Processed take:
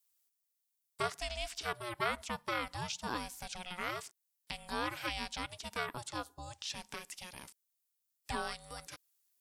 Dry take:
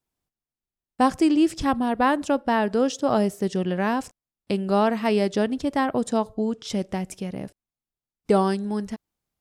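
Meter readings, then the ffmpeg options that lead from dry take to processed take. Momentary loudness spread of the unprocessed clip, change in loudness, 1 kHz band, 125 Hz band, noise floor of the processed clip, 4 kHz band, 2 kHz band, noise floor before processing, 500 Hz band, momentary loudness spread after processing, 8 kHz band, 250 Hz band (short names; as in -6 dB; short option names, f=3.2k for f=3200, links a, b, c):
10 LU, -16.0 dB, -14.5 dB, -16.5 dB, -84 dBFS, -4.5 dB, -7.5 dB, under -85 dBFS, -20.5 dB, 12 LU, -6.0 dB, -26.0 dB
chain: -filter_complex "[0:a]aderivative,acrossover=split=4200[a][b];[b]acompressor=threshold=-55dB:ratio=4:attack=1:release=60[c];[a][c]amix=inputs=2:normalize=0,asubboost=boost=10.5:cutoff=62,asplit=2[d][e];[e]acompressor=threshold=-54dB:ratio=6,volume=-1dB[f];[d][f]amix=inputs=2:normalize=0,aeval=exprs='val(0)*sin(2*PI*360*n/s)':c=same,volume=6dB"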